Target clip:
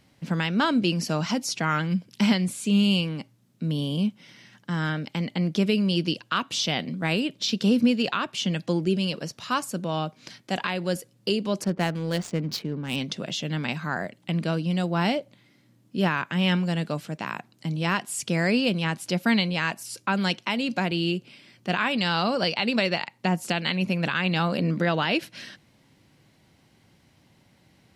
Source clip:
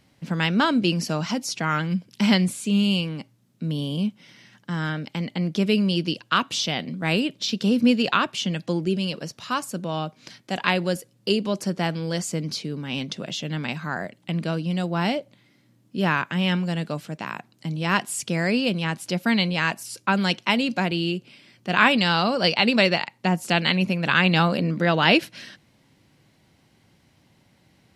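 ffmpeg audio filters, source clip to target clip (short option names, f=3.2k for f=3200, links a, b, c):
-filter_complex "[0:a]asettb=1/sr,asplit=3[a][b][c];[a]atrim=end=11.644[d];[b]atrim=start=11.64:end=12.96,asetpts=PTS-STARTPTS,afade=t=in:d=0.004:c=qsin,afade=t=out:st=1.316:d=0.004:c=qsin,adynamicsmooth=sensitivity=7:basefreq=980[e];[c]atrim=start=12.956[f];[d][e]acrossfade=d=0.004:c1=hsin:c2=qsin[g];[g][f]acrossfade=d=0.004:c1=qsin:c2=hsin,alimiter=limit=-12dB:level=0:latency=1:release=321"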